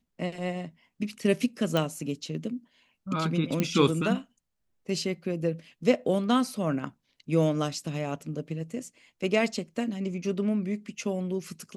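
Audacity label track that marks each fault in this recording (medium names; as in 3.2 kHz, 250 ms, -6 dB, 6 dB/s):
1.770000	1.770000	pop
3.600000	3.600000	pop -12 dBFS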